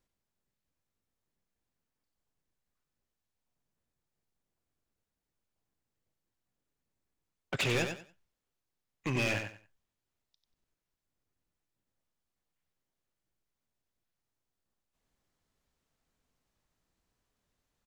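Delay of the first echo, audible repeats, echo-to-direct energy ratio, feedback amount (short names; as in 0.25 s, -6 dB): 93 ms, 3, -7.0 dB, 23%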